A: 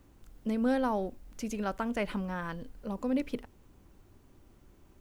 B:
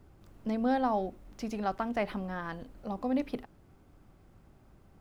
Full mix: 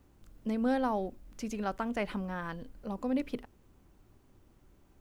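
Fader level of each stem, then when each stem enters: -4.0, -11.0 dB; 0.00, 0.00 s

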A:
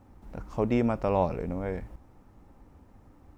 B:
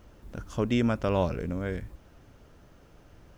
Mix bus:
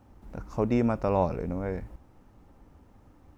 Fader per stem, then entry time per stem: -1.0, -13.5 dB; 0.00, 0.00 s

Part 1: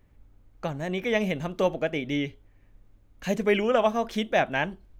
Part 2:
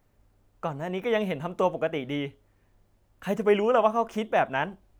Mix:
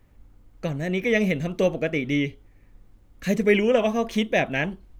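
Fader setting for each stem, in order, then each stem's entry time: +2.5, -0.5 dB; 0.00, 0.00 s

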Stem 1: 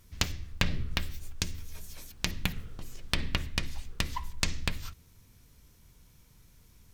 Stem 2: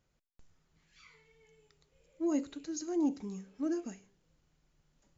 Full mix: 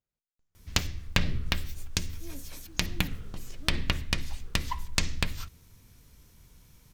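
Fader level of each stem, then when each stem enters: +2.5, -16.5 dB; 0.55, 0.00 s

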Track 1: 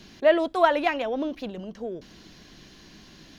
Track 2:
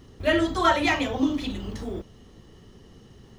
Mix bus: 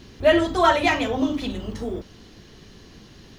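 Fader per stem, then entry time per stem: -1.0, +1.0 dB; 0.00, 0.00 s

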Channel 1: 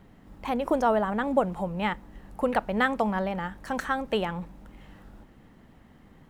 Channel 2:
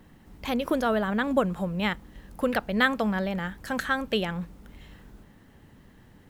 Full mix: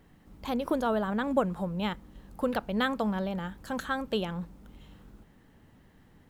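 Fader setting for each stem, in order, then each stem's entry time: -10.5, -6.0 dB; 0.00, 0.00 s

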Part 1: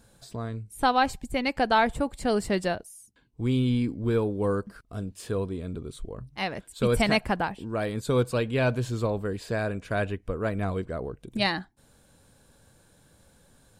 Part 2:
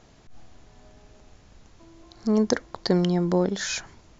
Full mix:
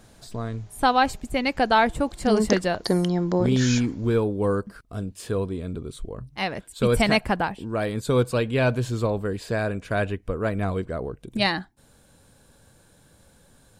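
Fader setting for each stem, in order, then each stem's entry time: +3.0, -0.5 dB; 0.00, 0.00 s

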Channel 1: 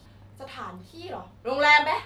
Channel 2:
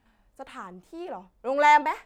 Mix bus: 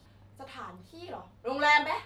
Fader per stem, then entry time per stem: -6.0, -9.0 dB; 0.00, 0.00 s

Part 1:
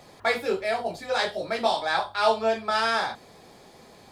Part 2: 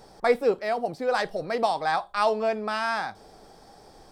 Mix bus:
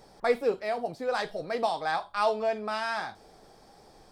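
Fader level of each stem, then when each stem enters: -14.5, -4.5 dB; 0.00, 0.00 s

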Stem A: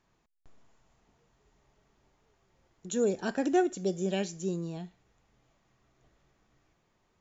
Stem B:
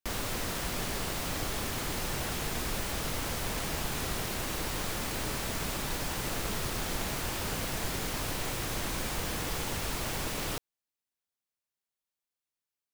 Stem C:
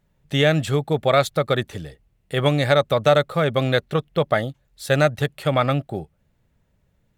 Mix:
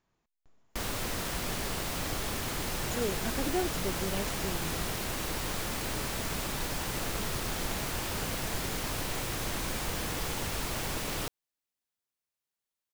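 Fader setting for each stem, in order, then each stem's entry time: -6.0 dB, 0.0 dB, off; 0.00 s, 0.70 s, off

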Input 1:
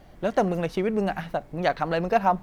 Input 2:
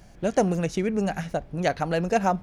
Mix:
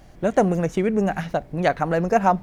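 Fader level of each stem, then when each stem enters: -0.5, -2.5 dB; 0.00, 0.00 s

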